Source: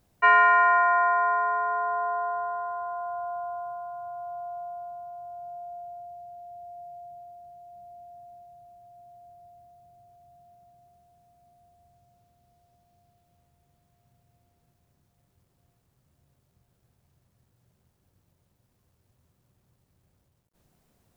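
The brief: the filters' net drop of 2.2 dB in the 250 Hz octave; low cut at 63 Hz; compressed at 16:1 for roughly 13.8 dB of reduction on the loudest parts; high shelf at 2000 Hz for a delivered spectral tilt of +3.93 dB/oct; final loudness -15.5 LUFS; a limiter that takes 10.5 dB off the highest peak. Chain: HPF 63 Hz; bell 250 Hz -3 dB; high shelf 2000 Hz -6.5 dB; compressor 16:1, threshold -30 dBFS; gain +23.5 dB; limiter -6.5 dBFS

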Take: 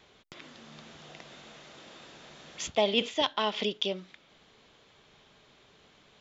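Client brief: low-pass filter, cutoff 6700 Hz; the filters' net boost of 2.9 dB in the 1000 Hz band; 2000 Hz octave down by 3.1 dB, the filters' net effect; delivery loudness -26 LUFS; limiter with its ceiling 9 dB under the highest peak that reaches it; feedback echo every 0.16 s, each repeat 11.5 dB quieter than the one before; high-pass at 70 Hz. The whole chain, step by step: HPF 70 Hz; LPF 6700 Hz; bell 1000 Hz +4.5 dB; bell 2000 Hz -5.5 dB; limiter -21.5 dBFS; feedback echo 0.16 s, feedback 27%, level -11.5 dB; gain +9 dB

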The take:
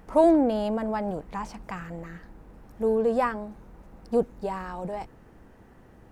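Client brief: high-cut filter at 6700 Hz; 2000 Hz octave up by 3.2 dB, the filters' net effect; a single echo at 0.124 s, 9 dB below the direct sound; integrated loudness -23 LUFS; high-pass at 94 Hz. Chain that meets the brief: HPF 94 Hz; LPF 6700 Hz; bell 2000 Hz +4 dB; echo 0.124 s -9 dB; gain +3.5 dB

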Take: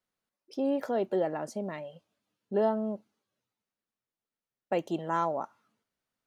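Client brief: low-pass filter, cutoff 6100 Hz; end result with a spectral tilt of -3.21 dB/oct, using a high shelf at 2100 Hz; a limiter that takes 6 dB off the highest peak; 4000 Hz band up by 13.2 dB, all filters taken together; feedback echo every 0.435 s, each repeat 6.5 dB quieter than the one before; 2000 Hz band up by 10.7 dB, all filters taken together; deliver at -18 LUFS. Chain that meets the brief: LPF 6100 Hz; bell 2000 Hz +8 dB; high shelf 2100 Hz +7.5 dB; bell 4000 Hz +8 dB; limiter -18 dBFS; feedback echo 0.435 s, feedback 47%, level -6.5 dB; gain +14 dB

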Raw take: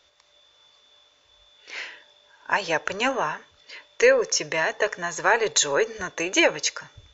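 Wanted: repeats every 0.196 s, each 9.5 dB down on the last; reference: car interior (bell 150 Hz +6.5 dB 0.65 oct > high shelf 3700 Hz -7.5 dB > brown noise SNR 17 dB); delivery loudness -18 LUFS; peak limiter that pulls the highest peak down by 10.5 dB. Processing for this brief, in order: limiter -15.5 dBFS; bell 150 Hz +6.5 dB 0.65 oct; high shelf 3700 Hz -7.5 dB; feedback echo 0.196 s, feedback 33%, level -9.5 dB; brown noise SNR 17 dB; gain +10.5 dB

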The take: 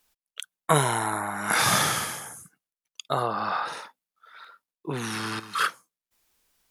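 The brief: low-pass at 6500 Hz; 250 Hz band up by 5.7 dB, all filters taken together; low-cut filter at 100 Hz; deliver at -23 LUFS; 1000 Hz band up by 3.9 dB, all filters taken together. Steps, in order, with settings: HPF 100 Hz; LPF 6500 Hz; bell 250 Hz +8 dB; bell 1000 Hz +4.5 dB; gain +1 dB

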